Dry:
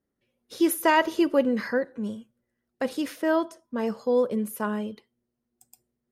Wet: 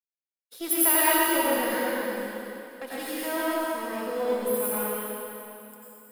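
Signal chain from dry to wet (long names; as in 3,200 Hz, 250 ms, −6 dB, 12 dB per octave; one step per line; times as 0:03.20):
gain on one half-wave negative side −7 dB
RIAA equalisation recording
downward expander −41 dBFS
parametric band 6,200 Hz −10 dB 0.92 octaves
dense smooth reverb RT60 3 s, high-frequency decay 0.9×, pre-delay 80 ms, DRR −9.5 dB
level −7 dB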